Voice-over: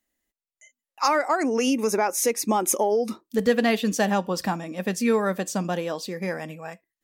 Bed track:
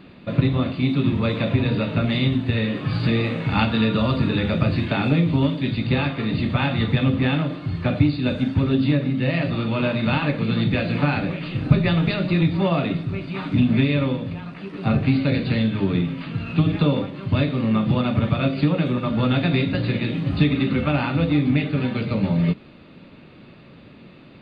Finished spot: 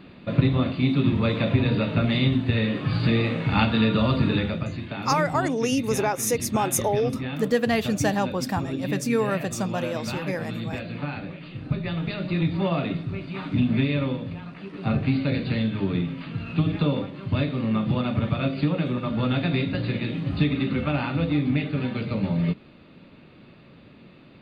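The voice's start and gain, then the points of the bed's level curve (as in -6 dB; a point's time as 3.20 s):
4.05 s, -1.5 dB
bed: 4.36 s -1 dB
4.67 s -10.5 dB
11.78 s -10.5 dB
12.52 s -4 dB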